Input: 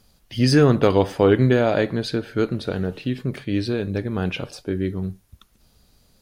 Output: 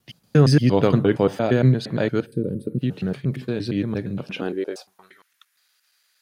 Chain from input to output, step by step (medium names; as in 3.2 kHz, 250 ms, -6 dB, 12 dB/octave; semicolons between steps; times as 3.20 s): slices played last to first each 116 ms, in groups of 3; high-pass sweep 140 Hz -> 1.7 kHz, 4.15–5.19 s; time-frequency box 2.26–2.82 s, 570–7900 Hz -22 dB; trim -3 dB